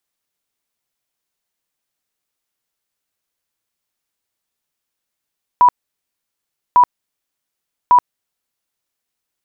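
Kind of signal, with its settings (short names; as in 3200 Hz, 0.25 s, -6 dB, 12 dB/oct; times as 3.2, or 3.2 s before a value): tone bursts 982 Hz, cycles 76, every 1.15 s, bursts 3, -5.5 dBFS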